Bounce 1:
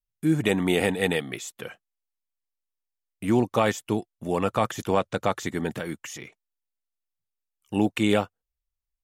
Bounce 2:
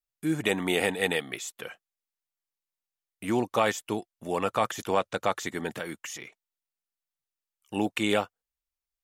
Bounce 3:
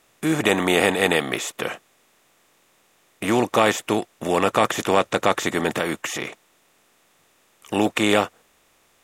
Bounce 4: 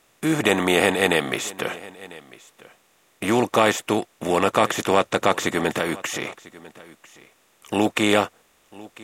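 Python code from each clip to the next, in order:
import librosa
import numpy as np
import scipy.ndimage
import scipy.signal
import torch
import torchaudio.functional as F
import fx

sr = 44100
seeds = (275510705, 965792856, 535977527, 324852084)

y1 = fx.low_shelf(x, sr, hz=300.0, db=-10.5)
y2 = fx.bin_compress(y1, sr, power=0.6)
y2 = F.gain(torch.from_numpy(y2), 4.5).numpy()
y3 = y2 + 10.0 ** (-20.5 / 20.0) * np.pad(y2, (int(997 * sr / 1000.0), 0))[:len(y2)]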